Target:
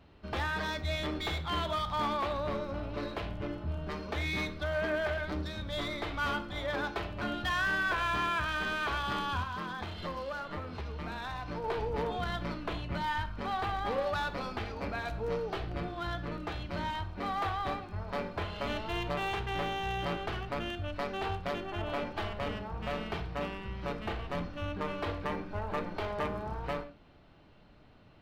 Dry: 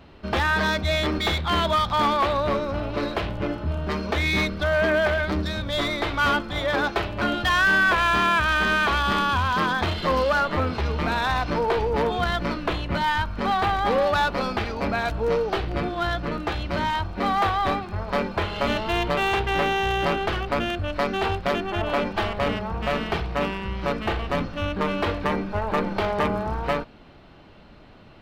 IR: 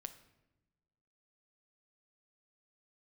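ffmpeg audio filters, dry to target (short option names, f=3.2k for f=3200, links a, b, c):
-filter_complex "[0:a]equalizer=f=82:w=1.5:g=4,asettb=1/sr,asplit=3[a][b][c];[a]atrim=end=9.434[d];[b]atrim=start=9.43:end=11.64,asetpts=PTS-STARTPTS,afade=t=in:d=0.004:c=qsin,afade=t=out:st=2.206:d=0.004:c=qsin,acompressor=threshold=-24dB:ratio=6[e];[c]atrim=start=11.636[f];[d][e]acrossfade=d=0.004:c1=hsin:c2=qsin[g];[g][f]acrossfade=d=0.004:c1=qsin:c2=hsin[h];[1:a]atrim=start_sample=2205,atrim=end_sample=6174[i];[h][i]afir=irnorm=-1:irlink=0,volume=-6.5dB"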